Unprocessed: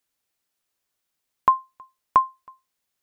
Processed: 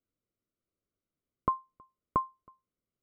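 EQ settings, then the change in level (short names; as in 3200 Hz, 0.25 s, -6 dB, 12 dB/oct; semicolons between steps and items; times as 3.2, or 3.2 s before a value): running mean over 51 samples; +4.0 dB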